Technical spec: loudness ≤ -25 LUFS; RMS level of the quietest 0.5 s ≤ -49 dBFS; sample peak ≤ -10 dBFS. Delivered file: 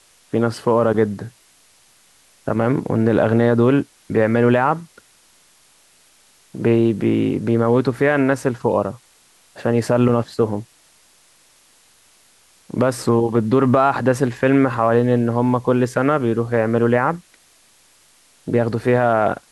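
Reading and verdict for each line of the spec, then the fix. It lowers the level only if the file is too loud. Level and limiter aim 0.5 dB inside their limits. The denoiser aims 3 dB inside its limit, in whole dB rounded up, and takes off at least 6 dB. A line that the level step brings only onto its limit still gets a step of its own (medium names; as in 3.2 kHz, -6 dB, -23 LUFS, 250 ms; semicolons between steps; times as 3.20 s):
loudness -18.0 LUFS: fail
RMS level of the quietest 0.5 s -54 dBFS: pass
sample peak -4.5 dBFS: fail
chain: trim -7.5 dB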